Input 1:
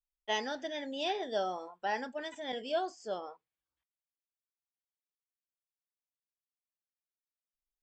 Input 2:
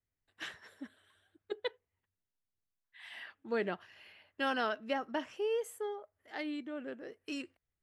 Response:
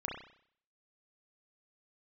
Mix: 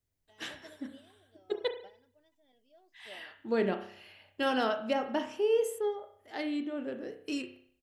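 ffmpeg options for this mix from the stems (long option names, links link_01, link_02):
-filter_complex "[0:a]asoftclip=type=tanh:threshold=-26.5dB,lowpass=5200,aecho=1:1:3.1:0.34,volume=-13.5dB[link_01];[1:a]asoftclip=type=hard:threshold=-23dB,volume=2.5dB,asplit=3[link_02][link_03][link_04];[link_03]volume=-4dB[link_05];[link_04]apad=whole_len=345038[link_06];[link_01][link_06]sidechaingate=range=-15dB:threshold=-57dB:ratio=16:detection=peak[link_07];[2:a]atrim=start_sample=2205[link_08];[link_05][link_08]afir=irnorm=-1:irlink=0[link_09];[link_07][link_02][link_09]amix=inputs=3:normalize=0,equalizer=frequency=1600:width=0.81:gain=-6.5"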